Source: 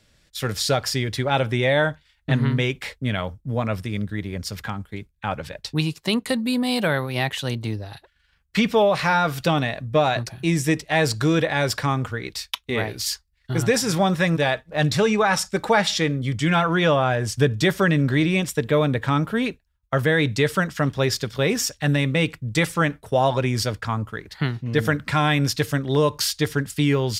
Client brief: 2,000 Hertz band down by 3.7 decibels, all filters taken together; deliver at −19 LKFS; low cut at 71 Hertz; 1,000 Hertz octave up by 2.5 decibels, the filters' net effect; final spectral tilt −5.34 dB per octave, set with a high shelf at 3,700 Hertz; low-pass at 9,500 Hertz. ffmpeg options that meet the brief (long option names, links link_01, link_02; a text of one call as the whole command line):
ffmpeg -i in.wav -af "highpass=71,lowpass=9500,equalizer=frequency=1000:width_type=o:gain=5,equalizer=frequency=2000:width_type=o:gain=-5,highshelf=frequency=3700:gain=-6,volume=3.5dB" out.wav